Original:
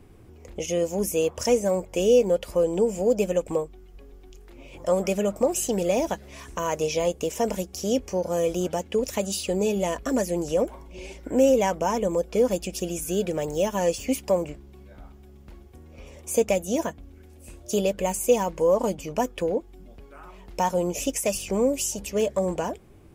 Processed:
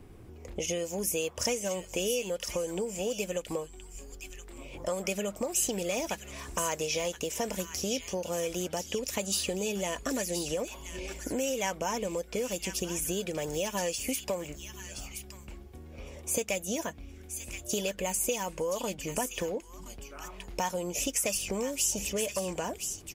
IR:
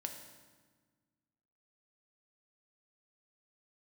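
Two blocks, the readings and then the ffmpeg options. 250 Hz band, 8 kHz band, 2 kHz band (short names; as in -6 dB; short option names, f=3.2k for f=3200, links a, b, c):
-9.0 dB, +1.0 dB, -0.5 dB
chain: -filter_complex "[0:a]acrossover=split=1500[a][b];[a]acompressor=threshold=-31dB:ratio=6[c];[b]aecho=1:1:1023:0.447[d];[c][d]amix=inputs=2:normalize=0"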